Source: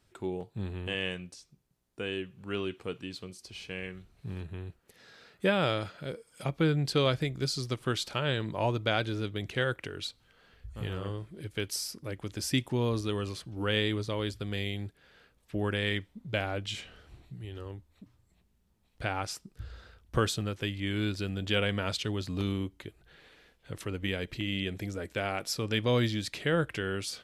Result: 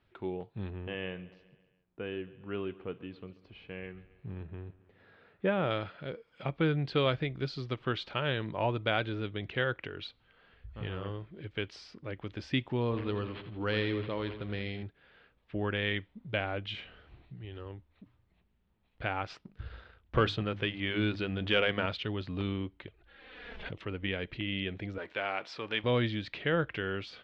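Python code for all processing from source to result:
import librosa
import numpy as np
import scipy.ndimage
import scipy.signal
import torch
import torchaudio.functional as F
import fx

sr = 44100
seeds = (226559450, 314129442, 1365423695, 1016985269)

y = fx.chain(x, sr, fx.lowpass(hz=1200.0, slope=6),
    fx.echo_feedback(ms=137, feedback_pct=57, wet_db=-19.0), at=(0.7, 5.71))
y = fx.chain(y, sr, fx.echo_split(split_hz=330.0, low_ms=133, high_ms=83, feedback_pct=52, wet_db=-11.0),
    fx.resample_linear(factor=6), at=(12.81, 14.83))
y = fx.chain(y, sr, fx.hum_notches(base_hz=50, count=6),
    fx.leveller(passes=1), at=(19.3, 21.86))
y = fx.chain(y, sr, fx.env_flanger(rest_ms=5.7, full_db=-36.0),
    fx.pre_swell(db_per_s=34.0), at=(22.87, 23.8))
y = fx.chain(y, sr, fx.law_mismatch(coded='mu'),
    fx.highpass(hz=580.0, slope=6),
    fx.peak_eq(hz=950.0, db=2.5, octaves=0.33), at=(24.98, 25.84))
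y = scipy.signal.sosfilt(scipy.signal.butter(4, 3400.0, 'lowpass', fs=sr, output='sos'), y)
y = fx.low_shelf(y, sr, hz=450.0, db=-3.0)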